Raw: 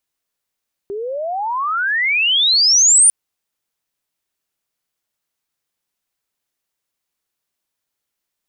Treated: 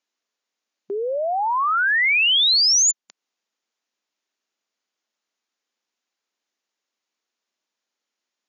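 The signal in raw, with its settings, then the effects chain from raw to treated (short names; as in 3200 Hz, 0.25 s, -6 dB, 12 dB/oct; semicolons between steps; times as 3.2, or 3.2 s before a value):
chirp logarithmic 390 Hz -> 9500 Hz -22.5 dBFS -> -6.5 dBFS 2.20 s
compressor, threshold -15 dBFS; brick-wall FIR band-pass 190–7200 Hz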